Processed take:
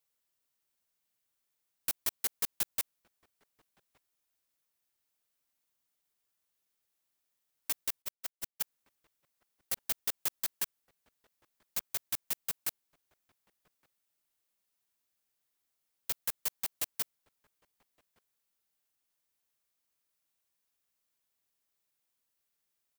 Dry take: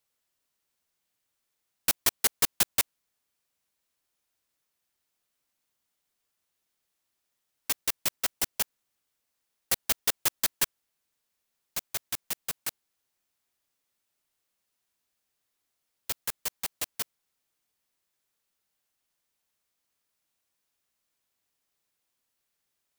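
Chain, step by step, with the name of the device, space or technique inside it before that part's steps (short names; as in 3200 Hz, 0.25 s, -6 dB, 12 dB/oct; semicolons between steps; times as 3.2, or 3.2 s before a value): 8.02–8.61 expander -19 dBFS; clipper into limiter (hard clip -11 dBFS, distortion -32 dB; limiter -18 dBFS, peak gain reduction 7 dB); high shelf 11000 Hz +6 dB; outdoor echo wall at 200 m, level -25 dB; gain -5 dB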